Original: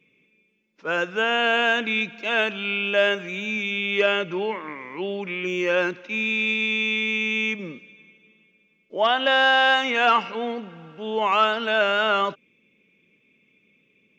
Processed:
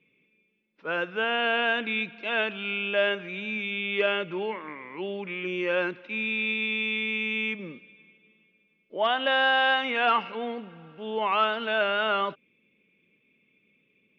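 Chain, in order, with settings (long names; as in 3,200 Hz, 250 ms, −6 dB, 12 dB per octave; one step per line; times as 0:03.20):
low-pass filter 4,100 Hz 24 dB per octave
level −4.5 dB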